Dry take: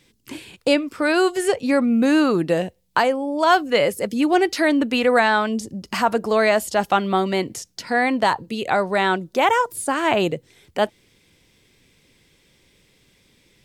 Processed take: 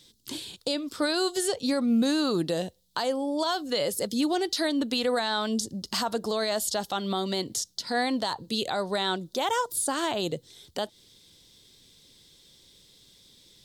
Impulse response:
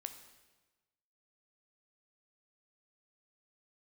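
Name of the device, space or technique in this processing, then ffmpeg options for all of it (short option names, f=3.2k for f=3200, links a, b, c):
over-bright horn tweeter: -af "highshelf=f=3k:t=q:w=3:g=7,alimiter=limit=-13.5dB:level=0:latency=1:release=167,volume=-4dB"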